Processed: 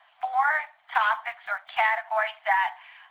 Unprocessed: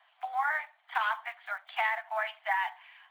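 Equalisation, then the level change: tone controls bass +10 dB, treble +4 dB; treble shelf 4.3 kHz -11.5 dB; +7.5 dB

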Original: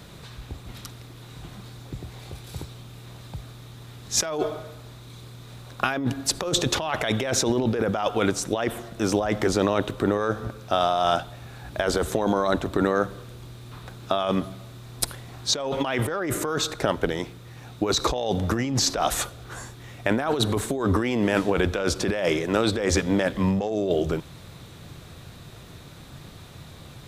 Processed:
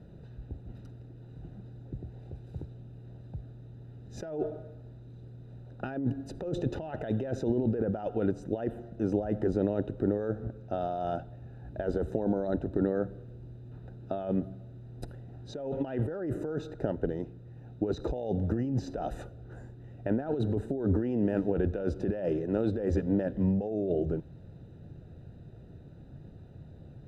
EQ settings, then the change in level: boxcar filter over 40 samples; -3.5 dB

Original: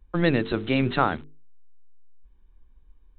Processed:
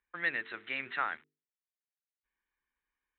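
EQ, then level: band-pass filter 1.9 kHz, Q 3.2; 0.0 dB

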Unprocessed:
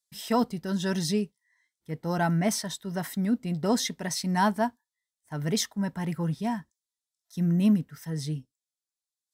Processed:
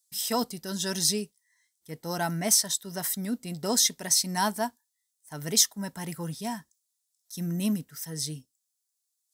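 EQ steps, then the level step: tone controls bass -5 dB, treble +15 dB; -2.5 dB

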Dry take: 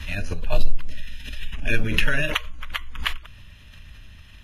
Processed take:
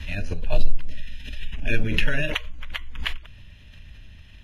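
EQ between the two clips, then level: low-pass 4 kHz 6 dB/octave; peaking EQ 1.2 kHz -8 dB 0.68 oct; 0.0 dB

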